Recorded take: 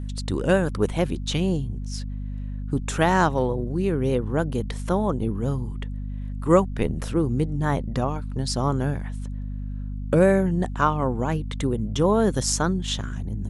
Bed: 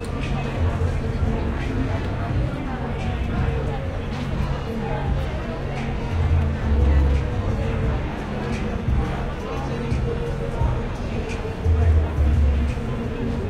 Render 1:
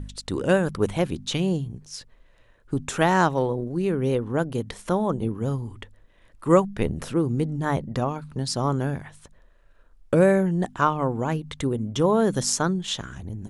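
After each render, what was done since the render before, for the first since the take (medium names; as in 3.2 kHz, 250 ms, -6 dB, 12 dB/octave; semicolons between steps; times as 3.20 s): de-hum 50 Hz, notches 5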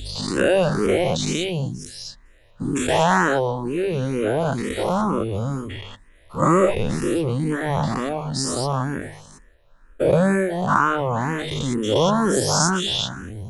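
every event in the spectrogram widened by 240 ms; barber-pole phaser +2.1 Hz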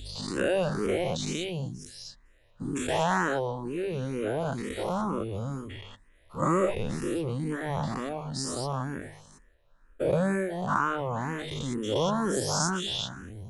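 trim -8.5 dB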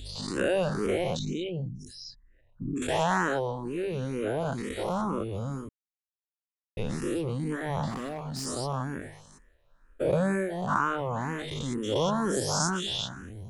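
1.19–2.82 s: resonances exaggerated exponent 2; 5.69–6.77 s: mute; 7.90–8.46 s: hard clipper -30.5 dBFS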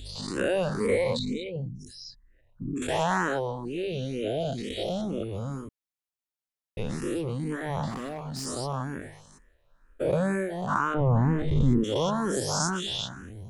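0.80–1.56 s: rippled EQ curve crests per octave 0.96, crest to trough 15 dB; 3.65–5.23 s: FFT filter 480 Hz 0 dB, 690 Hz +3 dB, 1 kHz -25 dB, 3.2 kHz +10 dB, 9.4 kHz -4 dB; 10.94–11.84 s: tilt EQ -4.5 dB/octave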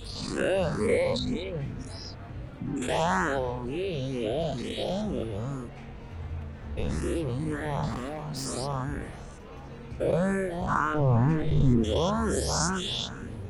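add bed -17 dB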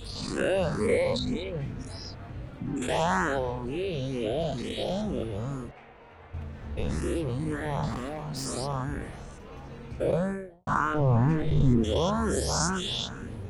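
5.71–6.34 s: three-band isolator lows -17 dB, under 400 Hz, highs -14 dB, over 3 kHz; 10.04–10.67 s: studio fade out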